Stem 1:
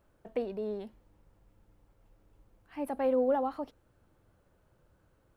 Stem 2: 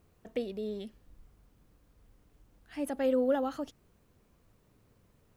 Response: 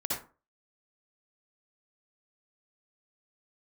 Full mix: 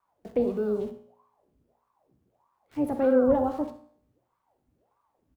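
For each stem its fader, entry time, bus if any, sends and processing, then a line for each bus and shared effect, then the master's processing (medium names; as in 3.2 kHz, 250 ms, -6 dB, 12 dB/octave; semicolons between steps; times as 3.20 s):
+1.0 dB, 0.00 s, send -14.5 dB, peaking EQ 320 Hz +10.5 dB 2.4 oct; small samples zeroed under -47 dBFS
-6.0 dB, 1.9 ms, send -15.5 dB, peaking EQ 100 Hz +12 dB 0.52 oct; ring modulator with a swept carrier 620 Hz, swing 75%, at 1.6 Hz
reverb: on, RT60 0.35 s, pre-delay 52 ms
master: peaking EQ 91 Hz +8 dB 2.5 oct; feedback comb 60 Hz, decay 0.62 s, harmonics all, mix 60%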